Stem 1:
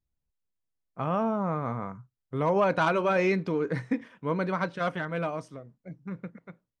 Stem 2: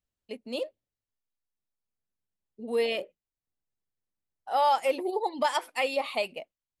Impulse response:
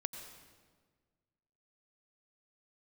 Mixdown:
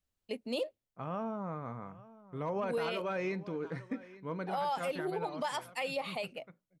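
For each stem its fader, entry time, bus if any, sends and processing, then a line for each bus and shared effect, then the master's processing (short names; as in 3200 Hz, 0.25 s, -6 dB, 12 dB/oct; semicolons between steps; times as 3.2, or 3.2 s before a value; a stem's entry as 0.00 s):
-10.0 dB, 0.00 s, no send, echo send -19 dB, dry
+1.5 dB, 0.00 s, no send, no echo send, auto duck -6 dB, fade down 0.40 s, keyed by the first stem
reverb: off
echo: echo 0.85 s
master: limiter -26 dBFS, peak gain reduction 8 dB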